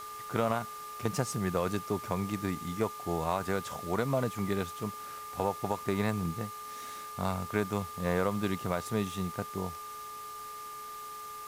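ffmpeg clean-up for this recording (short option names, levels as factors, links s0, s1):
-af "adeclick=t=4,bandreject=f=424.6:t=h:w=4,bandreject=f=849.2:t=h:w=4,bandreject=f=1273.8:t=h:w=4,bandreject=f=1698.4:t=h:w=4,bandreject=f=2123:t=h:w=4,bandreject=f=1200:w=30,afwtdn=0.0032"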